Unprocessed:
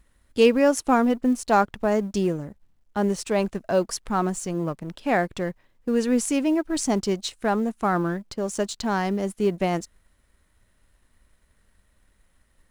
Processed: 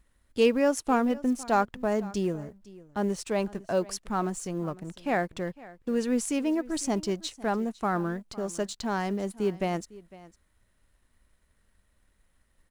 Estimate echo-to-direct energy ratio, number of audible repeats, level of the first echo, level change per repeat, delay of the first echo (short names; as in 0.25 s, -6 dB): -20.0 dB, 1, -20.0 dB, no steady repeat, 0.504 s